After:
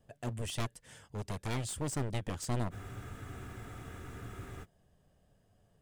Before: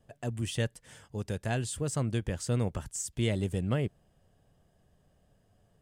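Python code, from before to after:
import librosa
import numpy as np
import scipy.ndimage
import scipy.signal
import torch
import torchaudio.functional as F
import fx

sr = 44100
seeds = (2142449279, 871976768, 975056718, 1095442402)

y = np.minimum(x, 2.0 * 10.0 ** (-33.0 / 20.0) - x)
y = fx.spec_freeze(y, sr, seeds[0], at_s=2.73, hold_s=1.9)
y = y * librosa.db_to_amplitude(-2.0)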